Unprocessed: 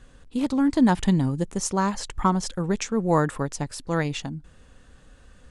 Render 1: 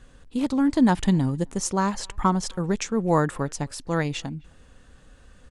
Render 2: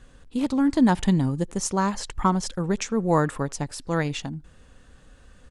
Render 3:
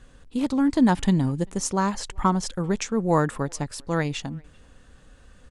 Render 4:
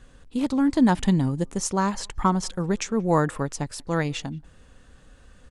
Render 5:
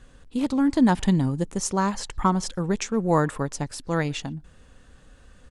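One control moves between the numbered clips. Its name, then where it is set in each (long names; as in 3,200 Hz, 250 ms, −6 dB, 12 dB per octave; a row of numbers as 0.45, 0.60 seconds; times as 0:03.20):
far-end echo of a speakerphone, delay time: 260, 80, 390, 180, 120 milliseconds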